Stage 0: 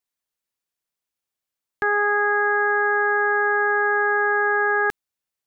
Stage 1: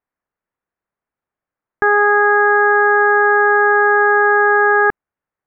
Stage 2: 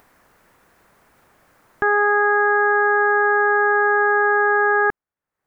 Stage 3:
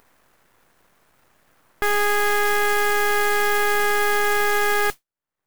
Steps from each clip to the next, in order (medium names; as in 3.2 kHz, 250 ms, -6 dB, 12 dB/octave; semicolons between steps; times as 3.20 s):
low-pass 1.8 kHz 24 dB/octave; trim +8.5 dB
upward compressor, threshold -25 dBFS; trim -4.5 dB
modulation noise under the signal 11 dB; half-wave rectifier